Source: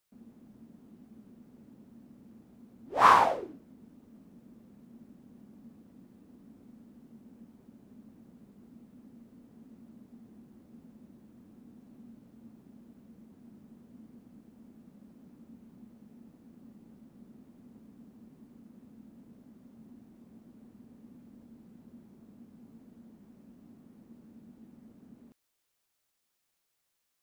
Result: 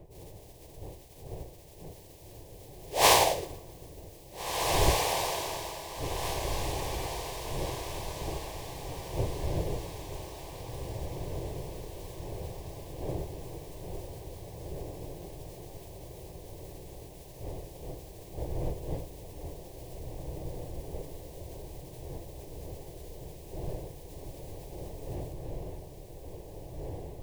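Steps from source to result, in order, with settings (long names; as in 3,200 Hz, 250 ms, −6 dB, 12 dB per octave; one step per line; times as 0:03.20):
compressing power law on the bin magnitudes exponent 0.55
wind on the microphone 290 Hz −41 dBFS
phaser with its sweep stopped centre 560 Hz, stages 4
feedback delay with all-pass diffusion 1,843 ms, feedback 51%, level −3.5 dB
on a send at −22 dB: convolution reverb RT60 1.8 s, pre-delay 7 ms
on the sum: level +3.5 dB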